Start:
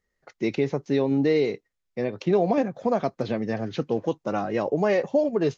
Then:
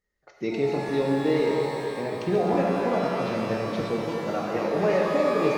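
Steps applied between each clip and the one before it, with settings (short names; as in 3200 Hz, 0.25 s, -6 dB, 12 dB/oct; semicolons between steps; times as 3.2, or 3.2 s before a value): regenerating reverse delay 0.127 s, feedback 74%, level -8 dB; shimmer reverb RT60 2.4 s, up +12 st, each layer -8 dB, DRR -0.5 dB; gain -5 dB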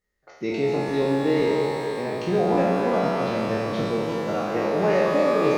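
spectral trails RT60 1.02 s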